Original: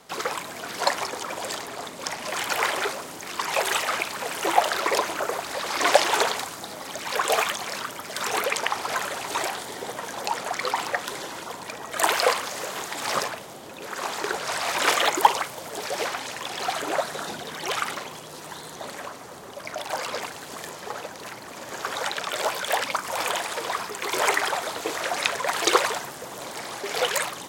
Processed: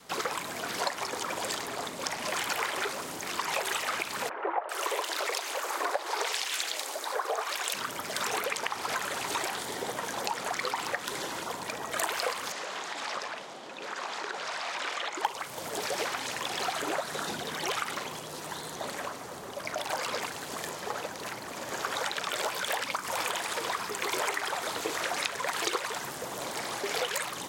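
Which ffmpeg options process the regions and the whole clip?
ffmpeg -i in.wav -filter_complex "[0:a]asettb=1/sr,asplit=3[link_01][link_02][link_03];[link_01]atrim=end=4.294[link_04];[link_02]atrim=start=4.29:end=7.74,asetpts=PTS-STARTPTS,afade=type=in:duration=0.004:curve=qsin,afade=type=out:start_time=3.446:duration=0.004:curve=qsin,highpass=frequency=370:width=0.5412,highpass=frequency=370:width=1.3066,acrossover=split=1700[link_05][link_06];[link_06]adelay=400[link_07];[link_05][link_07]amix=inputs=2:normalize=0,atrim=end_sample=152145[link_08];[link_03]atrim=start=7.736[link_09];[link_04][link_08]acrossfade=duration=0.004:curve1=hsin:curve2=qsin[link_10];[link_10][link_09]acrossfade=duration=0.004:curve1=qsin:curve2=hsin,asettb=1/sr,asplit=3[link_11][link_12][link_13];[link_11]atrim=end=12.524[link_14];[link_12]atrim=start=12.52:end=15.25,asetpts=PTS-STARTPTS,afade=type=in:duration=0.004:curve=qsin,afade=type=out:start_time=2.726:duration=0.004:curve=qsin,highpass=250,lowpass=5500,equalizer=frequency=390:width_type=o:width=1.5:gain=-4,acompressor=threshold=-33dB:ratio=3:attack=3.2:release=140:knee=1:detection=peak[link_15];[link_13]atrim=start=15.246[link_16];[link_14][link_15]acrossfade=duration=0.004:curve1=hsin:curve2=qsin[link_17];[link_17][link_16]acrossfade=duration=0.004:curve1=qsin:curve2=hsin,adynamicequalizer=threshold=0.0112:dfrequency=650:dqfactor=2:tfrequency=650:tqfactor=2:attack=5:release=100:ratio=0.375:range=2:mode=cutabove:tftype=bell,acompressor=threshold=-28dB:ratio=5" out.wav

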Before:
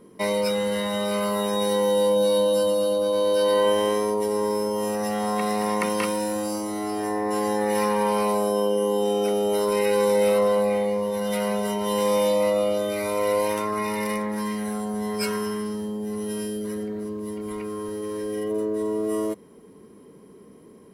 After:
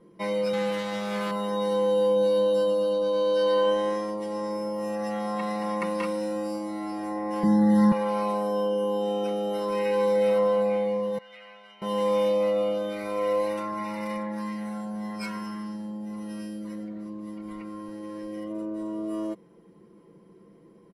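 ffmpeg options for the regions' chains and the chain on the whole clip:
ffmpeg -i in.wav -filter_complex "[0:a]asettb=1/sr,asplit=3[link_01][link_02][link_03];[link_01]atrim=end=0.534[link_04];[link_02]atrim=start=0.53:end=1.31,asetpts=PTS-STARTPTS,afade=type=in:duration=0.004:curve=qsin,afade=type=out:start_time=0.776:duration=0.004:curve=qsin,acrusher=bits=3:mix=0:aa=0.5,highpass=120[link_05];[link_03]atrim=start=1.306[link_06];[link_04][link_05]acrossfade=duration=0.004:curve1=hsin:curve2=qsin[link_07];[link_07][link_06]acrossfade=duration=0.004:curve1=qsin:curve2=hsin,asettb=1/sr,asplit=3[link_08][link_09][link_10];[link_08]atrim=end=2.904[link_11];[link_09]atrim=start=2.9:end=4.51,asetpts=PTS-STARTPTS,afade=type=in:duration=0.004:curve=qsin,afade=type=out:start_time=1.606:duration=0.004:curve=qsin,lowpass=6700,aemphasis=mode=production:type=cd[link_12];[link_10]atrim=start=4.506[link_13];[link_11][link_12]acrossfade=duration=0.004:curve1=hsin:curve2=qsin[link_14];[link_14][link_13]acrossfade=duration=0.004:curve1=qsin:curve2=hsin,asettb=1/sr,asplit=3[link_15][link_16][link_17];[link_15]atrim=end=7.434[link_18];[link_16]atrim=start=7.43:end=7.92,asetpts=PTS-STARTPTS,afade=type=in:duration=0.004:curve=qsin,afade=type=out:start_time=0.486:duration=0.004:curve=qsin,asuperstop=centerf=2500:order=20:qfactor=2.8,lowshelf=frequency=310:width_type=q:width=1.5:gain=13.5[link_19];[link_17]atrim=start=7.916[link_20];[link_18][link_19]acrossfade=duration=0.004:curve1=hsin:curve2=qsin[link_21];[link_21][link_20]acrossfade=duration=0.004:curve1=qsin:curve2=hsin,asettb=1/sr,asplit=3[link_22][link_23][link_24];[link_22]atrim=end=11.184[link_25];[link_23]atrim=start=11.18:end=11.82,asetpts=PTS-STARTPTS,afade=type=in:duration=0.004:curve=qsin,afade=type=out:start_time=0.636:duration=0.004:curve=qsin,lowpass=frequency=2300:width_type=q:width=1.8,aderivative[link_26];[link_24]atrim=start=11.816[link_27];[link_25][link_26]acrossfade=duration=0.004:curve1=hsin:curve2=qsin[link_28];[link_28][link_27]acrossfade=duration=0.004:curve1=qsin:curve2=hsin,aemphasis=mode=reproduction:type=50fm,aecho=1:1:5.9:0.92,volume=-7.5dB" out.wav

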